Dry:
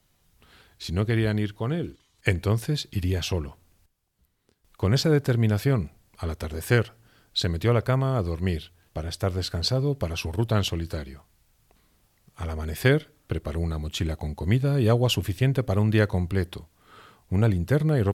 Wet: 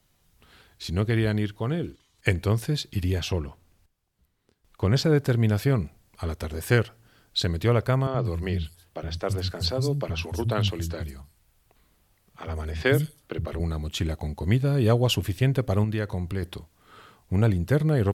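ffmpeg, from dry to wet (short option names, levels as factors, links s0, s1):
-filter_complex "[0:a]asettb=1/sr,asplit=3[s0][s1][s2];[s0]atrim=end=3.194[s3];[s1]atrim=start=3.19:end=5.16,asetpts=PTS-STARTPTS,afade=t=in:d=0.004:c=qsin,afade=t=out:st=1.966:d=0.004:c=qsin,highshelf=f=5800:g=-5[s4];[s2]atrim=start=5.156[s5];[s3][s4]acrossfade=d=0.004:c1=hsin:c2=qsin[s6];[s6][s5]acrossfade=d=0.004:c1=qsin:c2=hsin,asettb=1/sr,asplit=3[s7][s8][s9];[s7]atrim=end=8.074[s10];[s8]atrim=start=8.07:end=13.6,asetpts=PTS-STARTPTS,afade=t=in:d=0.004:c=qsin,afade=t=out:st=5.526:d=0.004:c=qsin,acrossover=split=200|5900[s11][s12][s13];[s11]adelay=70[s14];[s13]adelay=180[s15];[s14][s12][s15]amix=inputs=3:normalize=0,atrim=end_sample=243873[s16];[s9]atrim=start=13.596[s17];[s10][s16]acrossfade=d=0.004:c1=hsin:c2=qsin[s18];[s18][s17]acrossfade=d=0.004:c1=qsin:c2=hsin,asettb=1/sr,asplit=3[s19][s20][s21];[s19]atrim=end=15.844[s22];[s20]atrim=start=15.84:end=16.43,asetpts=PTS-STARTPTS,afade=t=in:d=0.004:c=qsin,afade=t=out:st=0.586:d=0.004:c=qsin,acompressor=threshold=0.0398:ratio=2:attack=3.2:release=140:knee=1:detection=peak[s23];[s21]atrim=start=16.426[s24];[s22][s23]acrossfade=d=0.004:c1=hsin:c2=qsin[s25];[s25][s24]acrossfade=d=0.004:c1=qsin:c2=hsin"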